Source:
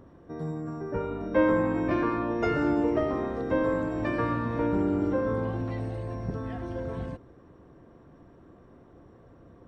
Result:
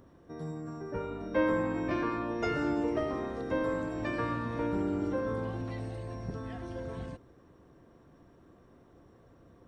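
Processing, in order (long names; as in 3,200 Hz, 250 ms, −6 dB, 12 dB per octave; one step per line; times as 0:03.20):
high-shelf EQ 3,100 Hz +10 dB
level −5.5 dB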